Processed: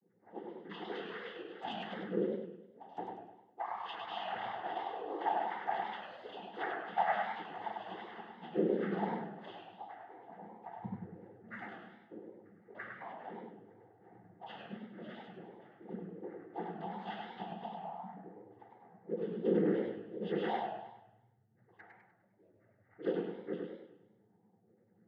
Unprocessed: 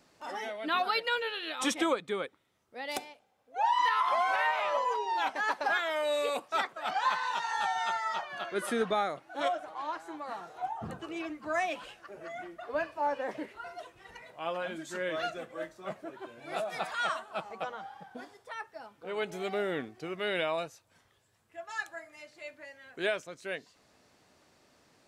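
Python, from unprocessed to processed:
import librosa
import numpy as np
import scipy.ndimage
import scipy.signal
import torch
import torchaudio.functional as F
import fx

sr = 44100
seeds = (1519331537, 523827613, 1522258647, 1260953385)

y = fx.wiener(x, sr, points=41)
y = fx.octave_resonator(y, sr, note='G', decay_s=0.58)
y = fx.noise_vocoder(y, sr, seeds[0], bands=16)
y = fx.echo_warbled(y, sr, ms=101, feedback_pct=46, rate_hz=2.8, cents=142, wet_db=-4)
y = y * 10.0 ** (14.5 / 20.0)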